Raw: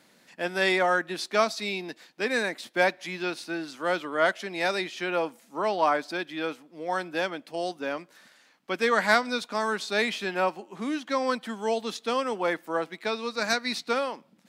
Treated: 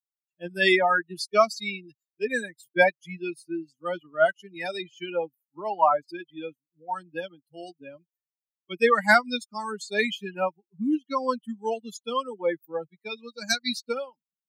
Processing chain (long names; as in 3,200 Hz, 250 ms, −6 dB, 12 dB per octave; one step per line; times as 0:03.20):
spectral dynamics exaggerated over time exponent 3
level +8 dB